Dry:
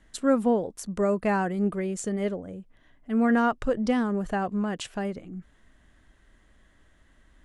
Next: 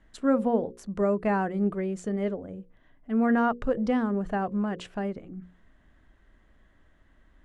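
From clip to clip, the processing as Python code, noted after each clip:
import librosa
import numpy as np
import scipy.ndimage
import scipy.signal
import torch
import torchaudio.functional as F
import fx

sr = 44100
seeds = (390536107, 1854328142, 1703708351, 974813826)

y = fx.lowpass(x, sr, hz=1900.0, slope=6)
y = fx.hum_notches(y, sr, base_hz=60, count=9)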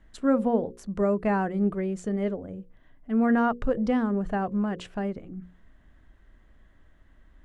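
y = fx.low_shelf(x, sr, hz=130.0, db=5.0)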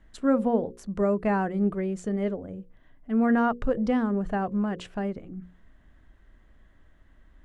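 y = x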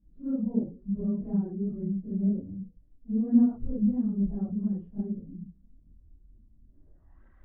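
y = fx.phase_scramble(x, sr, seeds[0], window_ms=100)
y = fx.filter_sweep_lowpass(y, sr, from_hz=220.0, to_hz=1500.0, start_s=6.66, end_s=7.23, q=1.3)
y = fx.chorus_voices(y, sr, voices=2, hz=1.1, base_ms=27, depth_ms=3.0, mix_pct=65)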